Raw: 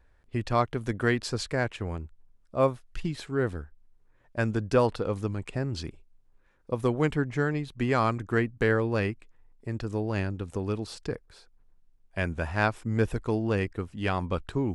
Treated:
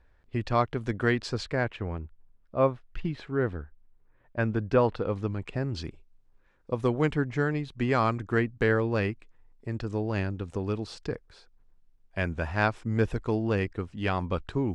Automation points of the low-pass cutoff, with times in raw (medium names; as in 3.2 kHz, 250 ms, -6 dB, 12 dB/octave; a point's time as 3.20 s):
1.26 s 5.6 kHz
1.87 s 2.9 kHz
4.80 s 2.9 kHz
5.88 s 6.4 kHz